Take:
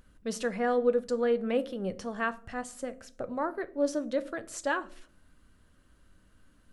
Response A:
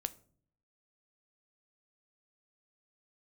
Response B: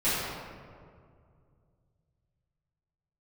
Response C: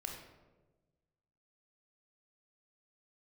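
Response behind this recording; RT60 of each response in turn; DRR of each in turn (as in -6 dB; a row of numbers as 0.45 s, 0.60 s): A; 0.50 s, 2.2 s, 1.2 s; 12.0 dB, -15.0 dB, 1.0 dB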